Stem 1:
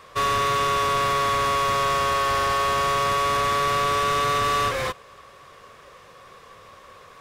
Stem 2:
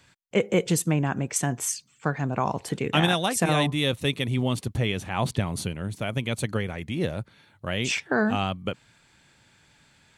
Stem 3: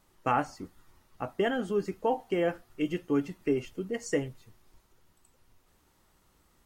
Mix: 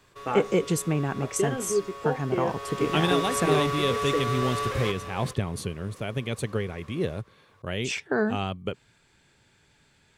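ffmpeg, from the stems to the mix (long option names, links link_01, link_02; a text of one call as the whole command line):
ffmpeg -i stem1.wav -i stem2.wav -i stem3.wav -filter_complex "[0:a]alimiter=limit=-21dB:level=0:latency=1,volume=-6.5dB,afade=type=in:start_time=2.45:duration=0.7:silence=0.237137,asplit=2[link_01][link_02];[link_02]volume=-10dB[link_03];[1:a]lowshelf=frequency=75:gain=6.5,volume=-4dB[link_04];[2:a]volume=-3.5dB[link_05];[link_03]aecho=0:1:411:1[link_06];[link_01][link_04][link_05][link_06]amix=inputs=4:normalize=0,equalizer=frequency=410:width=3.6:gain=7.5" out.wav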